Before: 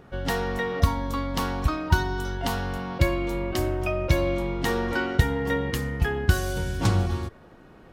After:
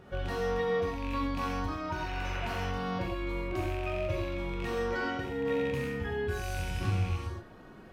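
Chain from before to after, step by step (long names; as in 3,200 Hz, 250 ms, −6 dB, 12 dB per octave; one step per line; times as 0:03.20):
loose part that buzzes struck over −25 dBFS, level −19 dBFS
sound drawn into the spectrogram noise, 0:01.91–0:02.66, 300–3,000 Hz −34 dBFS
downward compressor, threshold −30 dBFS, peak gain reduction 16.5 dB
harmonic and percussive parts rebalanced percussive −17 dB
reverb whose tail is shaped and stops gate 150 ms flat, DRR −1 dB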